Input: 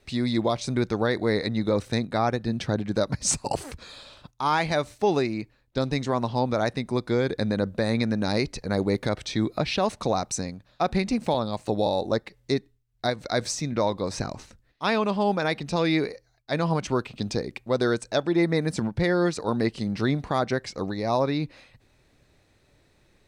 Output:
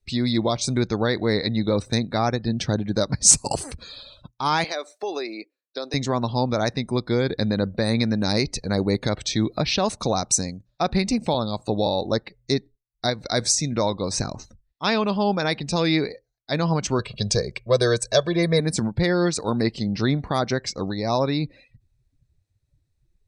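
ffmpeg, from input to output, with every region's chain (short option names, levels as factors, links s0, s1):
-filter_complex "[0:a]asettb=1/sr,asplit=3[s0][s1][s2];[s0]atrim=end=4.644[s3];[s1]atrim=start=4.64:end=5.94,asetpts=PTS-STARTPTS,afade=t=in:d=0.004:c=qsin,afade=t=out:st=1.296:d=0.004:c=qsin,highpass=f=350:w=0.5412,highpass=f=350:w=1.3066,bandreject=f=890:w=12,acompressor=threshold=0.0398:ratio=2.5:attack=3.2:release=140:knee=1:detection=peak[s4];[s2]atrim=start=5.936[s5];[s3][s4]acrossfade=d=0.004:c1=hsin:c2=qsin[s6];[s6][s5]acrossfade=d=0.004:c1=qsin:c2=hsin,asettb=1/sr,asplit=3[s7][s8][s9];[s7]atrim=end=16.994[s10];[s8]atrim=start=16.99:end=18.6,asetpts=PTS-STARTPTS,afade=t=in:d=0.004:c=qsin,afade=t=out:st=1.606:d=0.004:c=qsin,bandreject=f=1100:w=15,aecho=1:1:1.8:0.92,atrim=end_sample=71001[s11];[s9]atrim=start=18.596[s12];[s10][s11]acrossfade=d=0.004:c1=hsin:c2=qsin[s13];[s13][s12]acrossfade=d=0.004:c1=qsin:c2=hsin,afftdn=nr=26:nf=-48,bass=f=250:g=3,treble=f=4000:g=11,volume=1.12"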